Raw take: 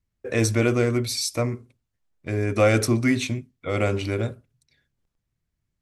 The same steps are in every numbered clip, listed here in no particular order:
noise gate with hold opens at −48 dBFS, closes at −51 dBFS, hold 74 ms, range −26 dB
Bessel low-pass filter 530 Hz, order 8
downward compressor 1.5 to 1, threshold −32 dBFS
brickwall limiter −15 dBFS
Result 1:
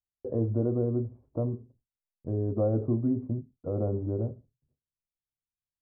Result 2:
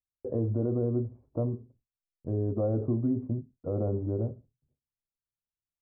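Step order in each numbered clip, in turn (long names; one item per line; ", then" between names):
noise gate with hold, then Bessel low-pass filter, then downward compressor, then brickwall limiter
noise gate with hold, then Bessel low-pass filter, then brickwall limiter, then downward compressor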